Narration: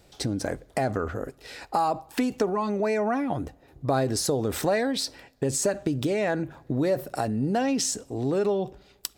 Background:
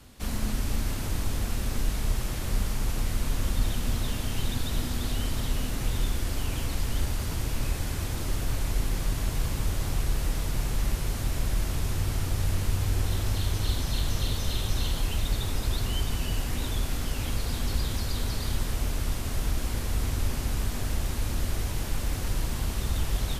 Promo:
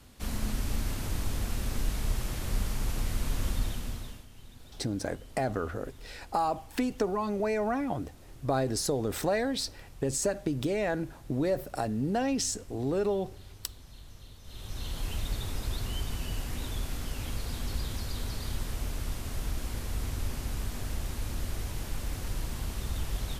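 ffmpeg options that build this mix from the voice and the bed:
-filter_complex "[0:a]adelay=4600,volume=-4dB[a];[1:a]volume=13.5dB,afade=t=out:st=3.48:d=0.78:silence=0.112202,afade=t=in:st=14.43:d=0.68:silence=0.149624[b];[a][b]amix=inputs=2:normalize=0"

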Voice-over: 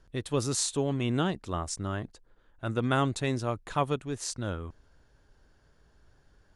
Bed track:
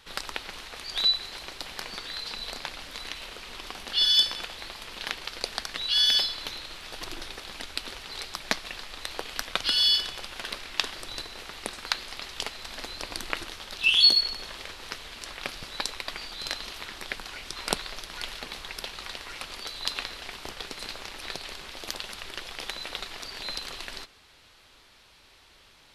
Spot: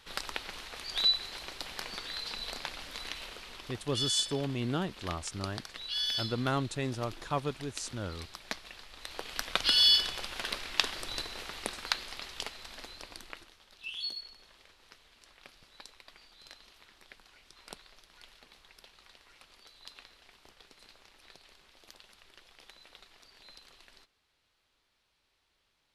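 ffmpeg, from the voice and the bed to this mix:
-filter_complex "[0:a]adelay=3550,volume=-4.5dB[a];[1:a]volume=7dB,afade=t=out:st=3.2:d=0.65:silence=0.421697,afade=t=in:st=8.94:d=0.74:silence=0.316228,afade=t=out:st=11.33:d=2.2:silence=0.112202[b];[a][b]amix=inputs=2:normalize=0"

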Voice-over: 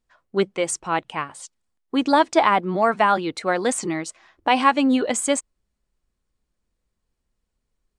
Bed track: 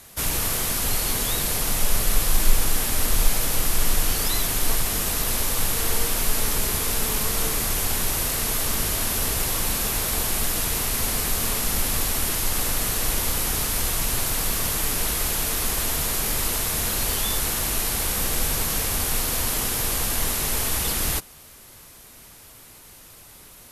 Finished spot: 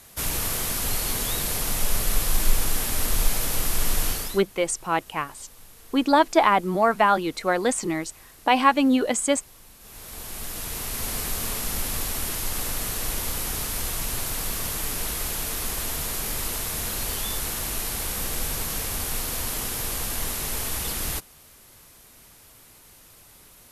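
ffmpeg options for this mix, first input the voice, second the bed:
-filter_complex "[0:a]adelay=4000,volume=-1dB[a];[1:a]volume=18.5dB,afade=t=out:st=4.07:d=0.36:silence=0.0707946,afade=t=in:st=9.79:d=1.38:silence=0.0891251[b];[a][b]amix=inputs=2:normalize=0"

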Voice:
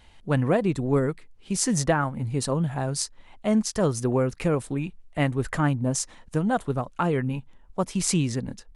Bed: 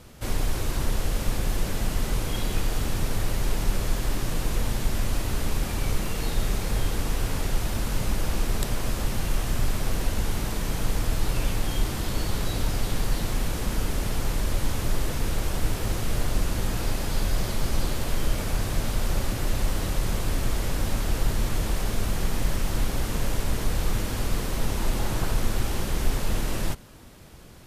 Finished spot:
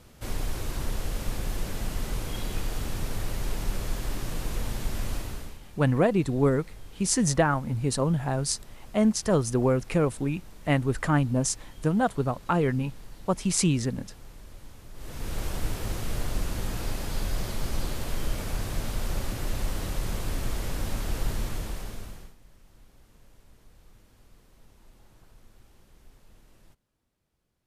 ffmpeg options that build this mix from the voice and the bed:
-filter_complex "[0:a]adelay=5500,volume=0dB[a];[1:a]volume=11.5dB,afade=t=out:st=5.13:d=0.45:silence=0.158489,afade=t=in:st=14.94:d=0.48:silence=0.149624,afade=t=out:st=21.34:d=1.01:silence=0.0501187[b];[a][b]amix=inputs=2:normalize=0"

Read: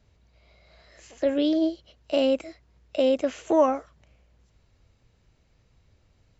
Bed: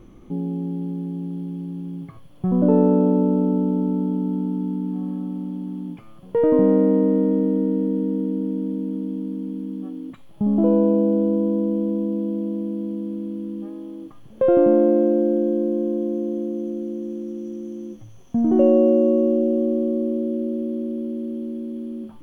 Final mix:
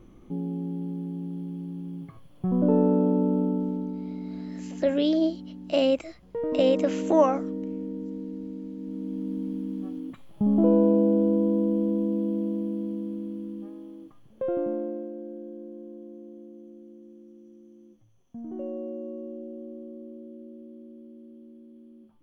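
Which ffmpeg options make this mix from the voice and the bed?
-filter_complex "[0:a]adelay=3600,volume=0dB[a];[1:a]volume=4.5dB,afade=t=out:st=3.4:d=0.57:silence=0.446684,afade=t=in:st=8.76:d=0.6:silence=0.334965,afade=t=out:st=12.42:d=2.69:silence=0.141254[b];[a][b]amix=inputs=2:normalize=0"

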